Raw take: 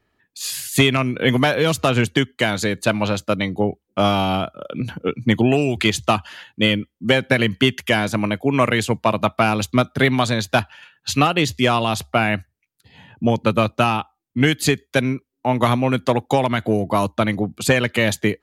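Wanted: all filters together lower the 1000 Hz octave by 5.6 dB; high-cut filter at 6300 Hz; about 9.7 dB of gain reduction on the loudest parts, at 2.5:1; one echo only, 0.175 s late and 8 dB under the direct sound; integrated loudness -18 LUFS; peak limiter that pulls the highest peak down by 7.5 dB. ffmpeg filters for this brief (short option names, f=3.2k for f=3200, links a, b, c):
-af "lowpass=6.3k,equalizer=f=1k:t=o:g=-8,acompressor=threshold=-27dB:ratio=2.5,alimiter=limit=-17.5dB:level=0:latency=1,aecho=1:1:175:0.398,volume=11.5dB"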